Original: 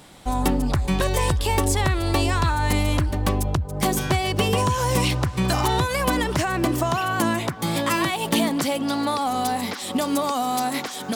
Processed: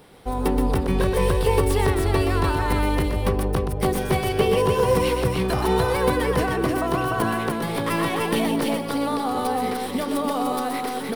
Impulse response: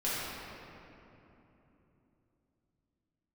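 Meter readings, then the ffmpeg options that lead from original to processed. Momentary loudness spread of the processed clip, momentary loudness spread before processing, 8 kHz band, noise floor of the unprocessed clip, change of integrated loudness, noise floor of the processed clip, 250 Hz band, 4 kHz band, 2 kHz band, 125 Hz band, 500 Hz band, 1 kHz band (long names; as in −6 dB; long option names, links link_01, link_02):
5 LU, 4 LU, −6.0 dB, −34 dBFS, 0.0 dB, −28 dBFS, 0.0 dB, −4.5 dB, −1.5 dB, −1.5 dB, +4.5 dB, −1.0 dB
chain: -filter_complex "[0:a]aecho=1:1:124|298:0.473|0.668,acrossover=split=2900[link_01][link_02];[link_02]aeval=exprs='max(val(0),0)':channel_layout=same[link_03];[link_01][link_03]amix=inputs=2:normalize=0,superequalizer=7b=2.51:15b=0.501:16b=1.41,volume=-3dB"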